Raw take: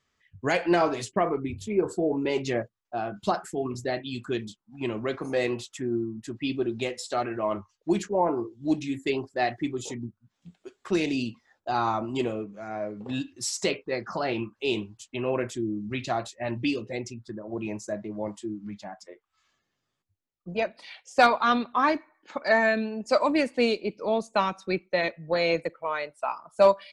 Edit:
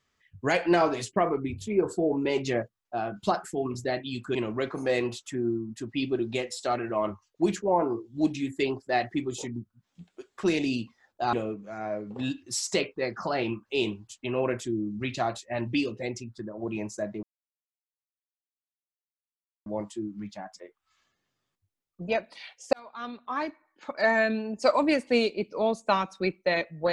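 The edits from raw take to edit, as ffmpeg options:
ffmpeg -i in.wav -filter_complex "[0:a]asplit=5[link_01][link_02][link_03][link_04][link_05];[link_01]atrim=end=4.352[link_06];[link_02]atrim=start=4.818:end=11.802[link_07];[link_03]atrim=start=12.228:end=18.13,asetpts=PTS-STARTPTS,afade=type=out:start_time=5.898:duration=0.004:curve=hsin,apad=pad_dur=2.43[link_08];[link_04]atrim=start=18.13:end=21.2,asetpts=PTS-STARTPTS,afade=type=in:duration=0.004:curve=hsin,afade=type=out:start_time=3.066:duration=0.004:curve=hsin[link_09];[link_05]atrim=start=21.2,asetpts=PTS-STARTPTS,afade=type=in:duration=1.65[link_10];[link_06][link_07]acrossfade=duration=0.004:curve1=hsin:curve2=hsin[link_11];[link_08][link_09][link_10]concat=n=3:v=0:a=1[link_12];[link_11][link_12]acrossfade=duration=0.004:curve1=hsin:curve2=hsin" out.wav

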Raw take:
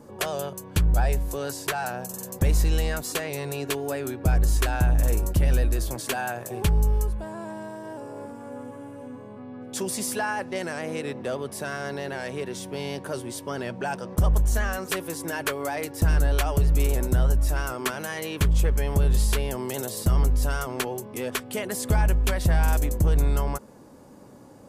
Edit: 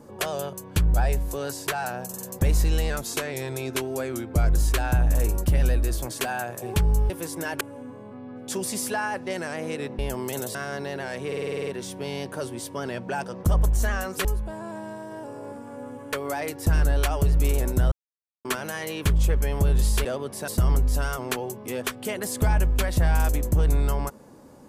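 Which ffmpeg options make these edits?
ffmpeg -i in.wav -filter_complex "[0:a]asplit=21[link_01][link_02][link_03][link_04][link_05][link_06][link_07][link_08][link_09][link_10][link_11][link_12][link_13][link_14][link_15][link_16][link_17][link_18][link_19][link_20][link_21];[link_01]atrim=end=2.904[link_22];[link_02]atrim=start=2.9:end=4.46,asetpts=PTS-STARTPTS,asetrate=41013,aresample=44100,atrim=end_sample=73974,asetpts=PTS-STARTPTS[link_23];[link_03]atrim=start=4.456:end=6.982[link_24];[link_04]atrim=start=14.968:end=15.482[link_25];[link_05]atrim=start=8.858:end=11.242[link_26];[link_06]atrim=start=19.398:end=19.962[link_27];[link_07]atrim=start=11.668:end=12.442[link_28];[link_08]atrim=start=12.388:end=12.442[link_29];[link_09]atrim=start=12.388:end=12.442[link_30];[link_10]atrim=start=12.388:end=12.442[link_31];[link_11]atrim=start=12.388:end=12.442[link_32];[link_12]atrim=start=12.388:end=12.442[link_33];[link_13]atrim=start=12.388:end=12.442[link_34];[link_14]atrim=start=12.388:end=12.442[link_35];[link_15]atrim=start=12.388:end=14.972[link_36];[link_16]atrim=start=6.978:end=8.862[link_37];[link_17]atrim=start=15.478:end=17.27,asetpts=PTS-STARTPTS,afade=type=out:start_time=1.788:duration=0.004:curve=hsin[link_38];[link_18]atrim=start=17.27:end=17.8,asetpts=PTS-STARTPTS,volume=0[link_39];[link_19]atrim=start=17.8:end=19.402,asetpts=PTS-STARTPTS,afade=type=in:duration=0.004:curve=hsin[link_40];[link_20]atrim=start=11.238:end=11.672[link_41];[link_21]atrim=start=19.958[link_42];[link_22][link_23]acrossfade=duration=0.004:curve1=hsin:curve2=hsin[link_43];[link_43][link_24]acrossfade=duration=0.004:curve1=hsin:curve2=hsin[link_44];[link_44][link_25]acrossfade=duration=0.004:curve1=hsin:curve2=hsin[link_45];[link_45][link_26]acrossfade=duration=0.004:curve1=hsin:curve2=hsin[link_46];[link_46][link_27]acrossfade=duration=0.004:curve1=hsin:curve2=hsin[link_47];[link_47][link_28]acrossfade=duration=0.004:curve1=hsin:curve2=hsin[link_48];[link_48][link_29]acrossfade=duration=0.004:curve1=hsin:curve2=hsin[link_49];[link_49][link_30]acrossfade=duration=0.004:curve1=hsin:curve2=hsin[link_50];[link_50][link_31]acrossfade=duration=0.004:curve1=hsin:curve2=hsin[link_51];[link_51][link_32]acrossfade=duration=0.004:curve1=hsin:curve2=hsin[link_52];[link_52][link_33]acrossfade=duration=0.004:curve1=hsin:curve2=hsin[link_53];[link_53][link_34]acrossfade=duration=0.004:curve1=hsin:curve2=hsin[link_54];[link_54][link_35]acrossfade=duration=0.004:curve1=hsin:curve2=hsin[link_55];[link_55][link_36]acrossfade=duration=0.004:curve1=hsin:curve2=hsin[link_56];[link_56][link_37]acrossfade=duration=0.004:curve1=hsin:curve2=hsin[link_57];[link_38][link_39][link_40]concat=n=3:v=0:a=1[link_58];[link_57][link_58]acrossfade=duration=0.004:curve1=hsin:curve2=hsin[link_59];[link_59][link_41]acrossfade=duration=0.004:curve1=hsin:curve2=hsin[link_60];[link_60][link_42]acrossfade=duration=0.004:curve1=hsin:curve2=hsin" out.wav

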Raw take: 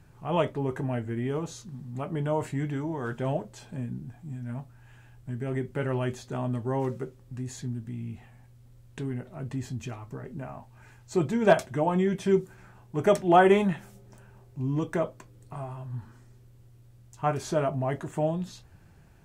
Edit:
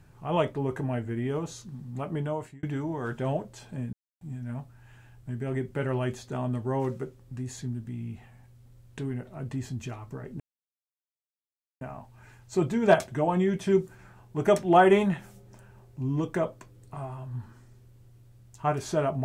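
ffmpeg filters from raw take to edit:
ffmpeg -i in.wav -filter_complex "[0:a]asplit=5[link_01][link_02][link_03][link_04][link_05];[link_01]atrim=end=2.63,asetpts=PTS-STARTPTS,afade=type=out:start_time=2.16:duration=0.47[link_06];[link_02]atrim=start=2.63:end=3.93,asetpts=PTS-STARTPTS,afade=type=in:duration=0.004:curve=hsin,afade=type=out:start_time=1.296:duration=0.004:curve=hsin[link_07];[link_03]atrim=start=3.93:end=4.21,asetpts=PTS-STARTPTS,volume=0[link_08];[link_04]atrim=start=4.21:end=10.4,asetpts=PTS-STARTPTS,afade=type=in:duration=0.004:curve=hsin,afade=type=out:start_time=6.186:duration=0.004:curve=hsin,apad=pad_dur=1.41[link_09];[link_05]atrim=start=10.4,asetpts=PTS-STARTPTS,afade=type=in:duration=0.004:curve=hsin[link_10];[link_06][link_07][link_08][link_09][link_10]concat=n=5:v=0:a=1" out.wav

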